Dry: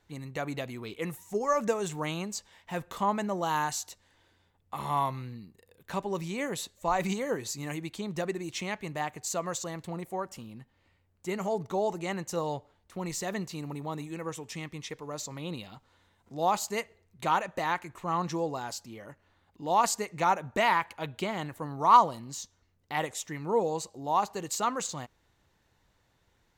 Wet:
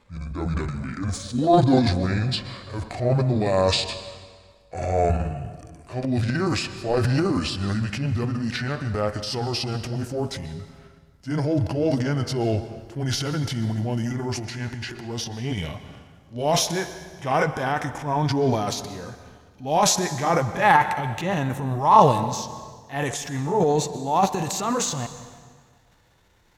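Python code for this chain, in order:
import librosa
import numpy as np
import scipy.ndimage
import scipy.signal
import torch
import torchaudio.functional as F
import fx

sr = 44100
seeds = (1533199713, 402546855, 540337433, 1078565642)

p1 = fx.pitch_glide(x, sr, semitones=-9.5, runs='ending unshifted')
p2 = fx.level_steps(p1, sr, step_db=13)
p3 = p1 + F.gain(torch.from_numpy(p2), -1.0).numpy()
p4 = fx.hpss(p3, sr, part='harmonic', gain_db=9)
p5 = fx.transient(p4, sr, attack_db=-6, sustain_db=9)
y = fx.rev_plate(p5, sr, seeds[0], rt60_s=1.7, hf_ratio=0.8, predelay_ms=110, drr_db=12.5)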